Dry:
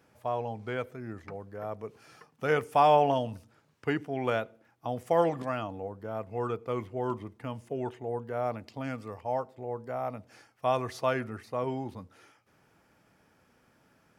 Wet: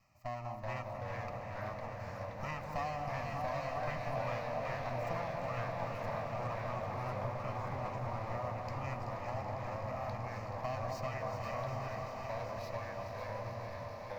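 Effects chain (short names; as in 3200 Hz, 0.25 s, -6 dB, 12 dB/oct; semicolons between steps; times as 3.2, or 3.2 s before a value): minimum comb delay 1.6 ms; echo with dull and thin repeats by turns 0.19 s, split 1100 Hz, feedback 82%, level -7.5 dB; compressor, threshold -31 dBFS, peak gain reduction 12 dB; fixed phaser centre 2300 Hz, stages 8; on a send: swelling echo 80 ms, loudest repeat 8, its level -15.5 dB; on the sum: echoes that change speed 0.347 s, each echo -2 st, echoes 2; gain -2 dB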